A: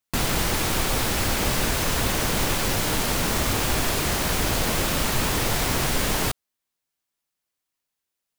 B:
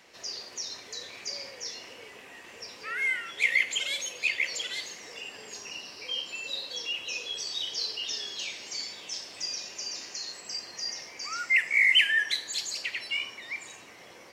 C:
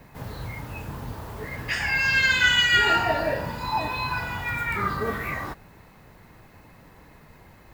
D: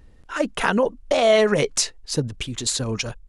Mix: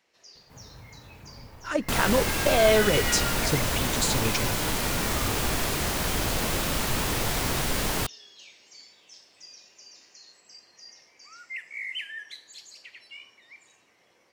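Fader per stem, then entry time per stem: -3.5, -14.0, -13.0, -4.0 dB; 1.75, 0.00, 0.35, 1.35 s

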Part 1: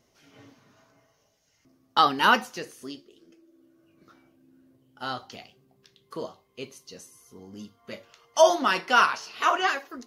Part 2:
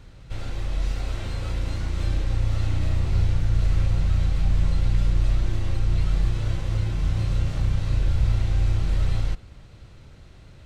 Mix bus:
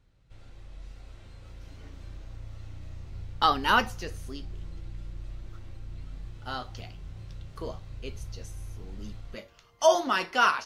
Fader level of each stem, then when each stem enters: -3.0, -19.0 dB; 1.45, 0.00 s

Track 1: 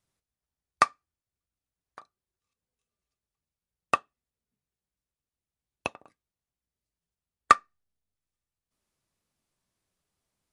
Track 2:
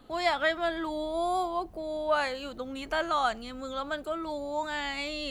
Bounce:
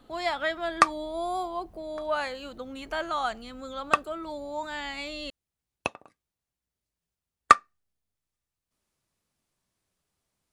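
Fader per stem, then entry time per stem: +2.0, -2.0 dB; 0.00, 0.00 s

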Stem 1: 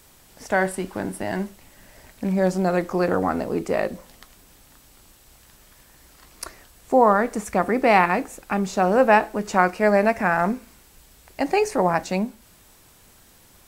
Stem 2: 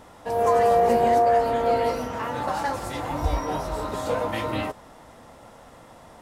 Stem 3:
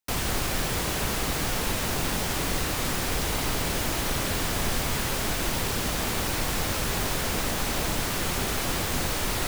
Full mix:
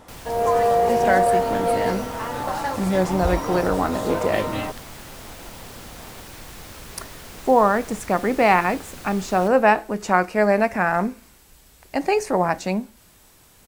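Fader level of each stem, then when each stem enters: 0.0, +0.5, -12.5 dB; 0.55, 0.00, 0.00 s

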